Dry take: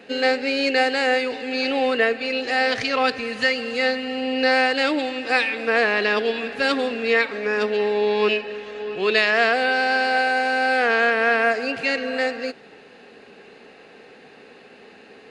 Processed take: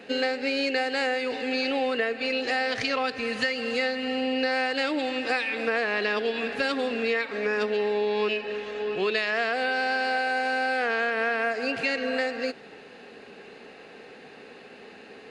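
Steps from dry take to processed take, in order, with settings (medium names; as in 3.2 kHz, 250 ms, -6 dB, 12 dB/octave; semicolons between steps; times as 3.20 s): compression, threshold -23 dBFS, peak gain reduction 9.5 dB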